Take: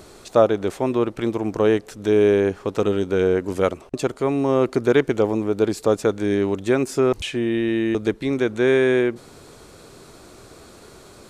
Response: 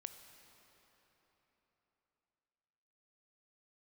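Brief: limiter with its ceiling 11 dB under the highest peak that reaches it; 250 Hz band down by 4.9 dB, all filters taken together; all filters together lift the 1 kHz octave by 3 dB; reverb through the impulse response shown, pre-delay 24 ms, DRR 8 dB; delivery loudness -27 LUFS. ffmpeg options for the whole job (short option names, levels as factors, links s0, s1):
-filter_complex "[0:a]equalizer=f=250:t=o:g=-7.5,equalizer=f=1000:t=o:g=4.5,alimiter=limit=0.237:level=0:latency=1,asplit=2[s0][s1];[1:a]atrim=start_sample=2205,adelay=24[s2];[s1][s2]afir=irnorm=-1:irlink=0,volume=0.668[s3];[s0][s3]amix=inputs=2:normalize=0,volume=0.75"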